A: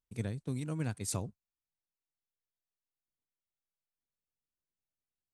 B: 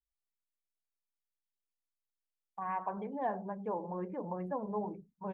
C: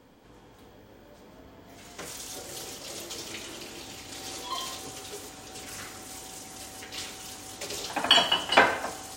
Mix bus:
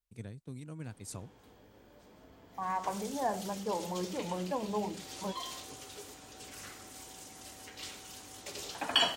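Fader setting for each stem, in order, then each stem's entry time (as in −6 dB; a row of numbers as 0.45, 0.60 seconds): −8.0, +2.0, −7.0 decibels; 0.00, 0.00, 0.85 seconds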